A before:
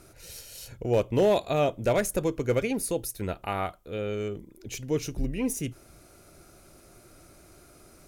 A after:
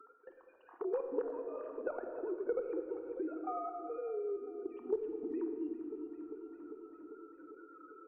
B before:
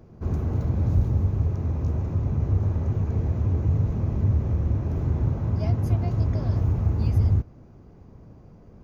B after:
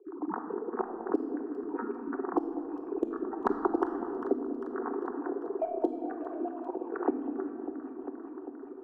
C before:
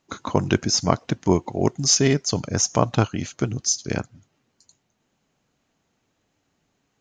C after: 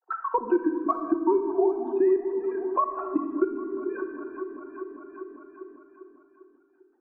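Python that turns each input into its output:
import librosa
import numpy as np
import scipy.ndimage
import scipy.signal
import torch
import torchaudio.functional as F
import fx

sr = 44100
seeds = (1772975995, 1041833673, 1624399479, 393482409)

y = fx.sine_speech(x, sr)
y = scipy.signal.sosfilt(scipy.signal.cheby1(4, 1.0, [280.0, 2100.0], 'bandpass', fs=sr, output='sos'), y)
y = fx.noise_reduce_blind(y, sr, reduce_db=16)
y = fx.low_shelf(y, sr, hz=420.0, db=5.0)
y = fx.level_steps(y, sr, step_db=19)
y = fx.cheby_harmonics(y, sr, harmonics=(2,), levels_db=(-43,), full_scale_db=-9.5)
y = fx.fixed_phaser(y, sr, hz=570.0, stages=6)
y = fx.echo_alternate(y, sr, ms=199, hz=970.0, feedback_pct=73, wet_db=-13.0)
y = fx.room_shoebox(y, sr, seeds[0], volume_m3=1100.0, walls='mixed', distance_m=1.0)
y = fx.band_squash(y, sr, depth_pct=70)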